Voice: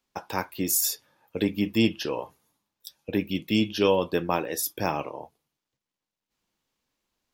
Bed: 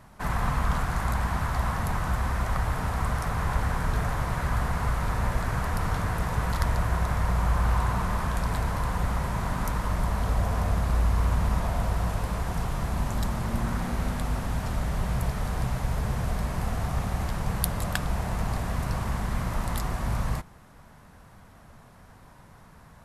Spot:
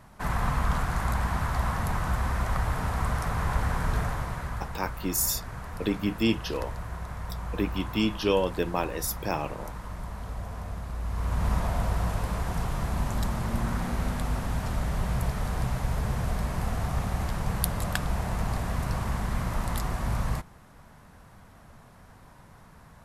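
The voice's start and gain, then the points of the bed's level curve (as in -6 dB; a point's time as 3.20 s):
4.45 s, -2.5 dB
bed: 3.98 s -0.5 dB
4.78 s -10.5 dB
10.98 s -10.5 dB
11.49 s -0.5 dB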